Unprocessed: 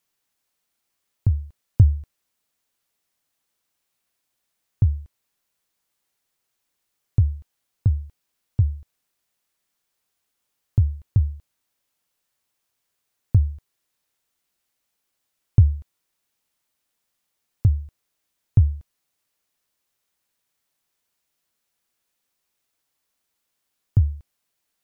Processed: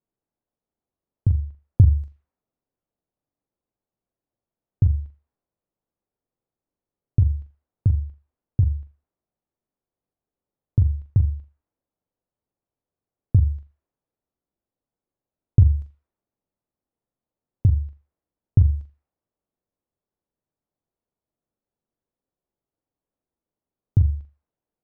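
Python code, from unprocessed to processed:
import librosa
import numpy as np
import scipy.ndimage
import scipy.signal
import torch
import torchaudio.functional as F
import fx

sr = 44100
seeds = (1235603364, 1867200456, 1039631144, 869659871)

y = fx.room_flutter(x, sr, wall_m=7.2, rt60_s=0.28)
y = fx.env_lowpass(y, sr, base_hz=580.0, full_db=-14.0)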